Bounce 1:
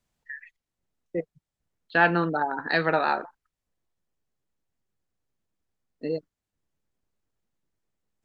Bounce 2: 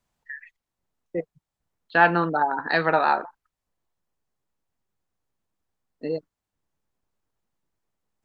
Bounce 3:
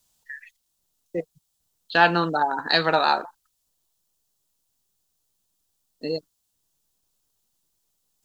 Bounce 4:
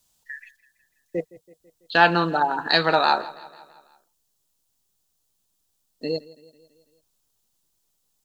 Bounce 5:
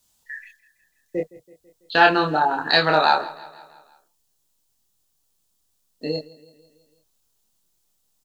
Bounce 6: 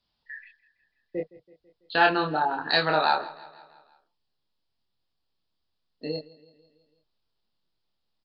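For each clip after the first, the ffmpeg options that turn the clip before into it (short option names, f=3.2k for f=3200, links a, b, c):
-af "equalizer=f=950:t=o:w=1.1:g=5.5"
-af "aexciter=amount=5.5:drive=4:freq=3k"
-af "aecho=1:1:165|330|495|660|825:0.0944|0.0548|0.0318|0.0184|0.0107,volume=1dB"
-filter_complex "[0:a]asplit=2[a][b];[b]adelay=26,volume=-3dB[c];[a][c]amix=inputs=2:normalize=0"
-af "aresample=11025,aresample=44100,volume=-5.5dB"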